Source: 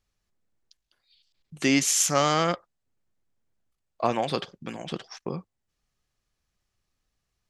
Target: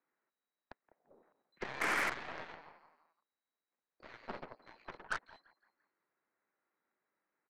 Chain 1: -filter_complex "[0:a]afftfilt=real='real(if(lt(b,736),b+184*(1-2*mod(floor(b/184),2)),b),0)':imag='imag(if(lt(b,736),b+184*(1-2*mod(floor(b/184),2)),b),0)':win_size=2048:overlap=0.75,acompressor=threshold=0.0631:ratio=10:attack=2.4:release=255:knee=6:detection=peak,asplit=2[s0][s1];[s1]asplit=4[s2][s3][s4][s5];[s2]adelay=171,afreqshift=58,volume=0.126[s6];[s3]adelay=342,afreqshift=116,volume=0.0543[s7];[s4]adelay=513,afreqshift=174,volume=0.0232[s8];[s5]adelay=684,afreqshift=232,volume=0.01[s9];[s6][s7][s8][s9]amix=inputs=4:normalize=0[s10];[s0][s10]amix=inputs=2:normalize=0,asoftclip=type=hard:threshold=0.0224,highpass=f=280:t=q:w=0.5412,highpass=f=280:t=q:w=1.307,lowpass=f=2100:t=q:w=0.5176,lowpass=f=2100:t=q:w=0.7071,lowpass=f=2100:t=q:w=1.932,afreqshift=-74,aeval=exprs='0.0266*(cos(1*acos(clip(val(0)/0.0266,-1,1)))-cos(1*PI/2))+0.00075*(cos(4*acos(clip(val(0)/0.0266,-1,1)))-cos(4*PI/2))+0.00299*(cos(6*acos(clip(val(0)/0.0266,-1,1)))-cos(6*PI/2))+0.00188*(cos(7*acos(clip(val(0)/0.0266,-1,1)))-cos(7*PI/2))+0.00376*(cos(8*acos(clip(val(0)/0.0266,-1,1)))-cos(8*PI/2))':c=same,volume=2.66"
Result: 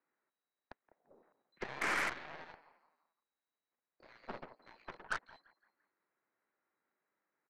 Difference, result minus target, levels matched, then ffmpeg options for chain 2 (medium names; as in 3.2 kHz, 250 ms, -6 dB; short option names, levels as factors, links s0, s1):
compression: peak gain reduction +11 dB
-filter_complex "[0:a]afftfilt=real='real(if(lt(b,736),b+184*(1-2*mod(floor(b/184),2)),b),0)':imag='imag(if(lt(b,736),b+184*(1-2*mod(floor(b/184),2)),b),0)':win_size=2048:overlap=0.75,asplit=2[s0][s1];[s1]asplit=4[s2][s3][s4][s5];[s2]adelay=171,afreqshift=58,volume=0.126[s6];[s3]adelay=342,afreqshift=116,volume=0.0543[s7];[s4]adelay=513,afreqshift=174,volume=0.0232[s8];[s5]adelay=684,afreqshift=232,volume=0.01[s9];[s6][s7][s8][s9]amix=inputs=4:normalize=0[s10];[s0][s10]amix=inputs=2:normalize=0,asoftclip=type=hard:threshold=0.0224,highpass=f=280:t=q:w=0.5412,highpass=f=280:t=q:w=1.307,lowpass=f=2100:t=q:w=0.5176,lowpass=f=2100:t=q:w=0.7071,lowpass=f=2100:t=q:w=1.932,afreqshift=-74,aeval=exprs='0.0266*(cos(1*acos(clip(val(0)/0.0266,-1,1)))-cos(1*PI/2))+0.00075*(cos(4*acos(clip(val(0)/0.0266,-1,1)))-cos(4*PI/2))+0.00299*(cos(6*acos(clip(val(0)/0.0266,-1,1)))-cos(6*PI/2))+0.00188*(cos(7*acos(clip(val(0)/0.0266,-1,1)))-cos(7*PI/2))+0.00376*(cos(8*acos(clip(val(0)/0.0266,-1,1)))-cos(8*PI/2))':c=same,volume=2.66"